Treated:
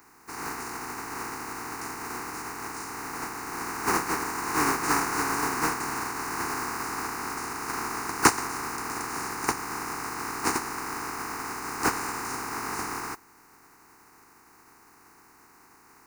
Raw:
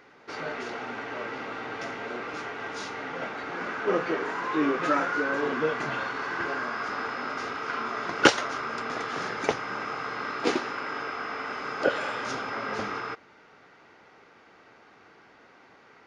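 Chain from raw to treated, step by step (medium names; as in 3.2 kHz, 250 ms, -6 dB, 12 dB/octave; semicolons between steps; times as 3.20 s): spectral contrast reduction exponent 0.24; high-order bell 540 Hz +9 dB 2.3 oct; static phaser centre 1.4 kHz, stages 4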